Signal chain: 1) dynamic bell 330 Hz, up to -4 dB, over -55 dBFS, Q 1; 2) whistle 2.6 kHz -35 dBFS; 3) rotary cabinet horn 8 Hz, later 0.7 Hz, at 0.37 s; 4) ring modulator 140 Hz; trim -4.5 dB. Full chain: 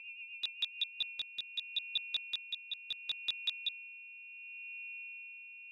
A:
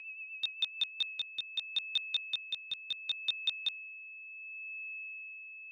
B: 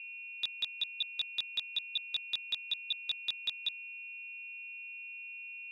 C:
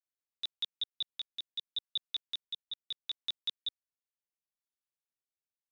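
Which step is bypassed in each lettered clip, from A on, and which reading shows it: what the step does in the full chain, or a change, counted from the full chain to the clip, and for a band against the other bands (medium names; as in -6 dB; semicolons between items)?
4, crest factor change -2.5 dB; 3, crest factor change -2.0 dB; 2, momentary loudness spread change -6 LU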